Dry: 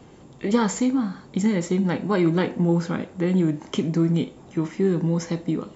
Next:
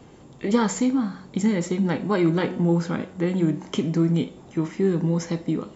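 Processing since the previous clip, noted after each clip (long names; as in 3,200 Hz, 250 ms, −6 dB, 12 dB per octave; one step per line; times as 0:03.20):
hum removal 183.8 Hz, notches 30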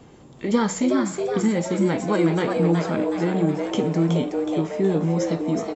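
echo with shifted repeats 370 ms, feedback 49%, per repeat +140 Hz, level −5 dB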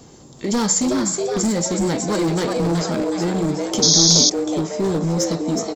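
gain into a clipping stage and back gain 18.5 dB
sound drawn into the spectrogram noise, 0:03.82–0:04.30, 3,200–6,800 Hz −27 dBFS
high shelf with overshoot 3,700 Hz +9.5 dB, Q 1.5
level +2.5 dB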